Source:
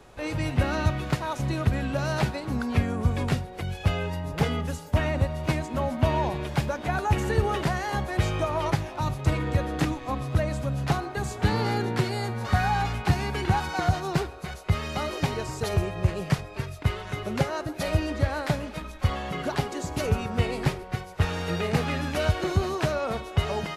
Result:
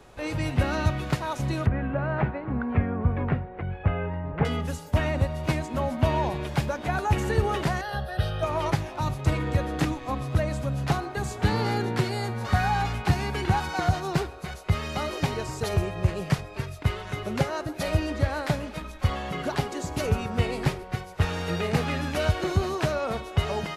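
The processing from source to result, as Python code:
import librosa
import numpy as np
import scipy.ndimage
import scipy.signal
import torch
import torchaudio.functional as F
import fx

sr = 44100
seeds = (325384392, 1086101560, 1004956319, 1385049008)

y = fx.lowpass(x, sr, hz=2100.0, slope=24, at=(1.66, 4.45))
y = fx.fixed_phaser(y, sr, hz=1500.0, stages=8, at=(7.81, 8.43))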